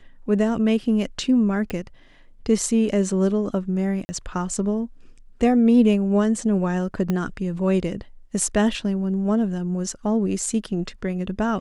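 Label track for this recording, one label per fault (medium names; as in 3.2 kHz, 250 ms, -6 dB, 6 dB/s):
1.700000	1.700000	pop -16 dBFS
4.050000	4.090000	dropout 40 ms
7.100000	7.100000	pop -12 dBFS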